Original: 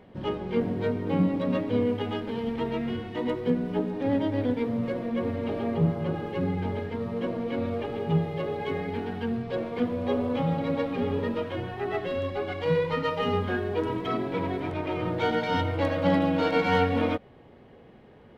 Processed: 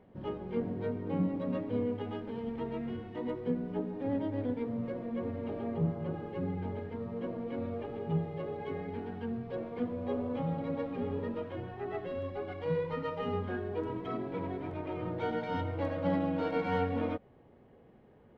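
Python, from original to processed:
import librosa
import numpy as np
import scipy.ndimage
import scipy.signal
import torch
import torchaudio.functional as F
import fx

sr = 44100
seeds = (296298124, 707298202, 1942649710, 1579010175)

y = fx.high_shelf(x, sr, hz=2400.0, db=-11.5)
y = y * librosa.db_to_amplitude(-7.0)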